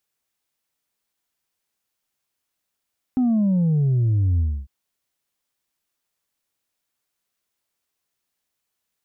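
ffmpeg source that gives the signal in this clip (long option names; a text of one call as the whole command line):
ffmpeg -f lavfi -i "aevalsrc='0.15*clip((1.5-t)/0.28,0,1)*tanh(1.26*sin(2*PI*260*1.5/log(65/260)*(exp(log(65/260)*t/1.5)-1)))/tanh(1.26)':duration=1.5:sample_rate=44100" out.wav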